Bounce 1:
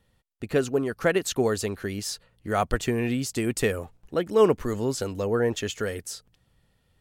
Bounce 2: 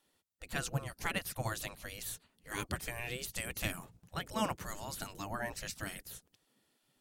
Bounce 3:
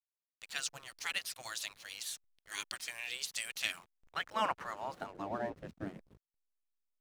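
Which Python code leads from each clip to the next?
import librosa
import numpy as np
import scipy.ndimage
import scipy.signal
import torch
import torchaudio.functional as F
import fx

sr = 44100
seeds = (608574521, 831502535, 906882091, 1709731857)

y1 = fx.spec_gate(x, sr, threshold_db=-15, keep='weak')
y1 = fx.bass_treble(y1, sr, bass_db=15, treble_db=6)
y1 = y1 * librosa.db_to_amplitude(-4.5)
y2 = fx.filter_sweep_bandpass(y1, sr, from_hz=4700.0, to_hz=310.0, start_s=3.48, end_s=5.66, q=1.0)
y2 = fx.backlash(y2, sr, play_db=-54.5)
y2 = y2 * librosa.db_to_amplitude(6.5)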